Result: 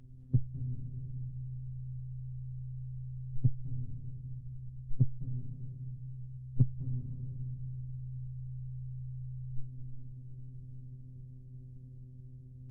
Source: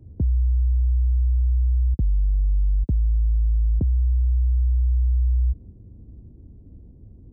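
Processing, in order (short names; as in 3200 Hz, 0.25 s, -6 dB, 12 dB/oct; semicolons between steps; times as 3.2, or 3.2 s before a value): bin magnitudes rounded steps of 15 dB; robotiser 220 Hz; added harmonics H 7 -42 dB, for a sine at -17 dBFS; on a send at -8 dB: reverb RT60 1.8 s, pre-delay 0.116 s; on the sum: speed mistake 78 rpm record played at 45 rpm; gain +3 dB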